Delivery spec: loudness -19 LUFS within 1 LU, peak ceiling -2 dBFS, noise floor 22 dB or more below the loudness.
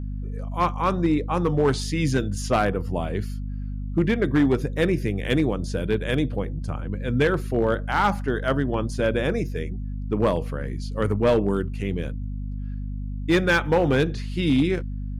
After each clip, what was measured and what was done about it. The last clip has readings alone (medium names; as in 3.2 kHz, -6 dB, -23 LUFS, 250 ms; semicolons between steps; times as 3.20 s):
clipped samples 0.8%; clipping level -13.0 dBFS; hum 50 Hz; highest harmonic 250 Hz; hum level -28 dBFS; loudness -24.5 LUFS; peak level -13.0 dBFS; loudness target -19.0 LUFS
-> clip repair -13 dBFS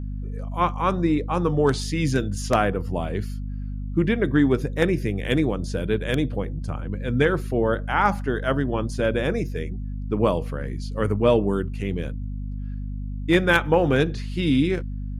clipped samples 0.0%; hum 50 Hz; highest harmonic 250 Hz; hum level -27 dBFS
-> de-hum 50 Hz, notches 5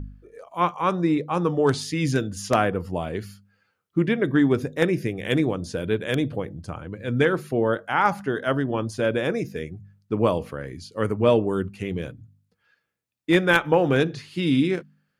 hum not found; loudness -24.0 LUFS; peak level -3.5 dBFS; loudness target -19.0 LUFS
-> trim +5 dB; peak limiter -2 dBFS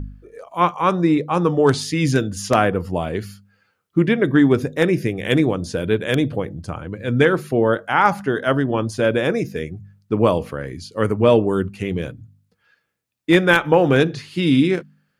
loudness -19.0 LUFS; peak level -2.0 dBFS; noise floor -71 dBFS